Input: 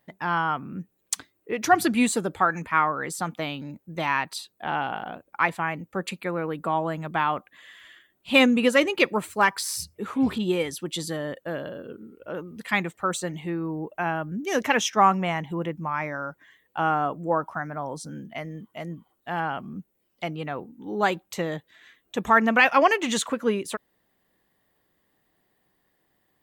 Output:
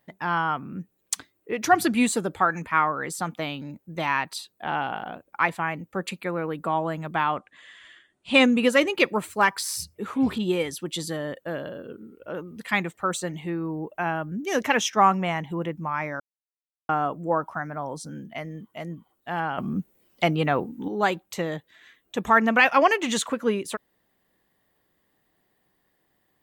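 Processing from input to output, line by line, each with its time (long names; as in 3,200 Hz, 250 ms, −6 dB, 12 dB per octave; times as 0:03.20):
0:07.24–0:08.44: linear-phase brick-wall low-pass 10,000 Hz
0:16.20–0:16.89: silence
0:19.58–0:20.88: clip gain +9 dB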